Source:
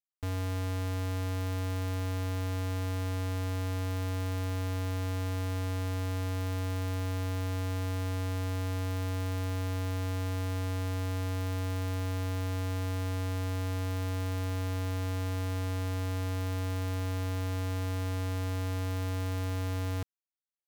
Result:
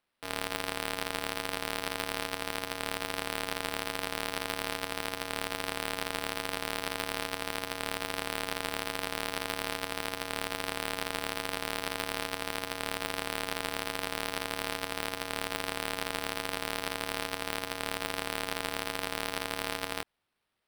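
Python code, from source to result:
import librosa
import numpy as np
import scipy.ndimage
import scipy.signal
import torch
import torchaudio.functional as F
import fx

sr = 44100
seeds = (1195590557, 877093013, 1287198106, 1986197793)

y = scipy.signal.sosfilt(scipy.signal.butter(2, 460.0, 'highpass', fs=sr, output='sos'), x)
y = fx.high_shelf(y, sr, hz=2600.0, db=11.5)
y = fx.sample_hold(y, sr, seeds[0], rate_hz=6800.0, jitter_pct=0)
y = F.gain(torch.from_numpy(y), 3.0).numpy()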